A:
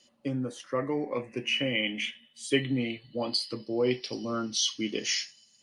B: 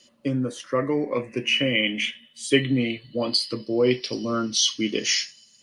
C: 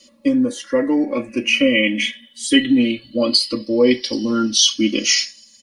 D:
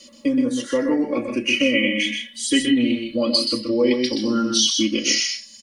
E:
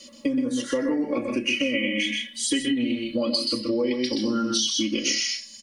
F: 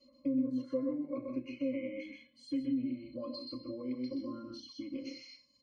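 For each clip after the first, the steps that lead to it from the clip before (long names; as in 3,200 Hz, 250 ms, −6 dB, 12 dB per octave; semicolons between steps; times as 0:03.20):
parametric band 800 Hz −10.5 dB 0.2 octaves; level +6.5 dB
comb filter 3.6 ms, depth 98%; phaser whose notches keep moving one way falling 0.57 Hz; level +4.5 dB
downward compressor 1.5 to 1, threshold −35 dBFS, peak gain reduction 9.5 dB; loudspeakers that aren't time-aligned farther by 43 metres −6 dB, 54 metres −11 dB; level +4 dB
on a send at −20 dB: convolution reverb RT60 0.50 s, pre-delay 7 ms; on the sum: downward compressor, threshold −21 dBFS, peak gain reduction 8.5 dB
resonances in every octave C, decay 0.1 s; level −5.5 dB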